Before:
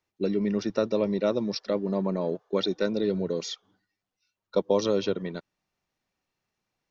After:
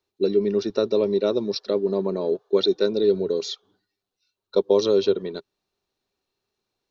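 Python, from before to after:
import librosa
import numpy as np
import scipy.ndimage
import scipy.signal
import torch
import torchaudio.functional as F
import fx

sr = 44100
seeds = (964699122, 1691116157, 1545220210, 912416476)

y = fx.graphic_eq_31(x, sr, hz=(160, 400, 2000, 4000), db=(-7, 11, -6, 9))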